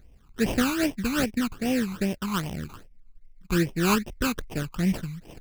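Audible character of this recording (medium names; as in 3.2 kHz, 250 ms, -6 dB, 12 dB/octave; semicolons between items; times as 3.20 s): aliases and images of a low sample rate 2.1 kHz, jitter 20%; phasing stages 12, 2.5 Hz, lowest notch 550–1400 Hz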